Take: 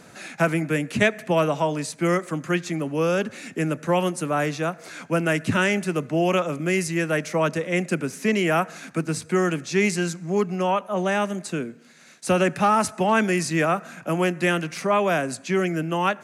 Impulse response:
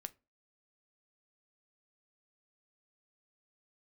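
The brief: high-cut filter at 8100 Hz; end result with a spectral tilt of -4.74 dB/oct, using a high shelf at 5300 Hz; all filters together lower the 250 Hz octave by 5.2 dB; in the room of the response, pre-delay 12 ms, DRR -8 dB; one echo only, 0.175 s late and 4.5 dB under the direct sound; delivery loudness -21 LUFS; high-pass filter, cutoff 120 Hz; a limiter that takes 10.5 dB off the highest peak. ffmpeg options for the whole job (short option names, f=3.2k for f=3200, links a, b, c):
-filter_complex "[0:a]highpass=120,lowpass=8.1k,equalizer=f=250:t=o:g=-8,highshelf=f=5.3k:g=-5.5,alimiter=limit=-19dB:level=0:latency=1,aecho=1:1:175:0.596,asplit=2[a][b];[1:a]atrim=start_sample=2205,adelay=12[c];[b][c]afir=irnorm=-1:irlink=0,volume=12.5dB[d];[a][d]amix=inputs=2:normalize=0,volume=-2dB"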